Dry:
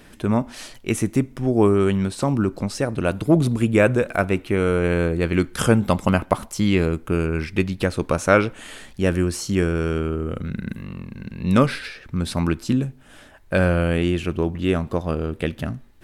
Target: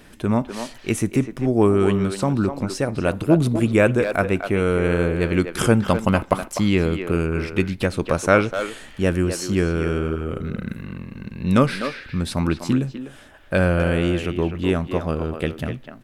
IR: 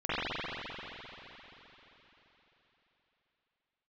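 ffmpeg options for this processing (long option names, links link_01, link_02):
-filter_complex "[0:a]asplit=2[link_01][link_02];[link_02]adelay=250,highpass=300,lowpass=3400,asoftclip=type=hard:threshold=-9.5dB,volume=-7dB[link_03];[link_01][link_03]amix=inputs=2:normalize=0"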